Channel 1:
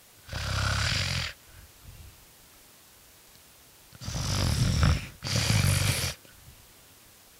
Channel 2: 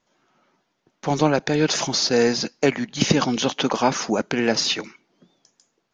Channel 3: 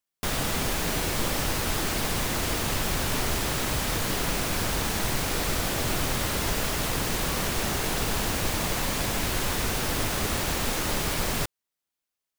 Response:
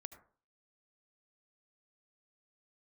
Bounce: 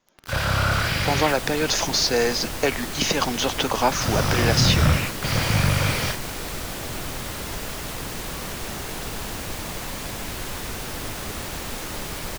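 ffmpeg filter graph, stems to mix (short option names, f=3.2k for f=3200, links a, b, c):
-filter_complex "[0:a]asplit=2[a][b];[b]highpass=f=720:p=1,volume=33dB,asoftclip=type=tanh:threshold=-8.5dB[c];[a][c]amix=inputs=2:normalize=0,lowpass=f=1.3k:p=1,volume=-6dB,aeval=exprs='val(0)*gte(abs(val(0)),0.0398)':c=same,lowshelf=f=170:g=9,volume=-3dB[d];[1:a]acrossover=split=470|3000[e][f][g];[e]acompressor=threshold=-28dB:ratio=6[h];[h][f][g]amix=inputs=3:normalize=0,volume=0.5dB[i];[2:a]acontrast=82,adelay=1050,volume=-11dB[j];[d][i][j]amix=inputs=3:normalize=0"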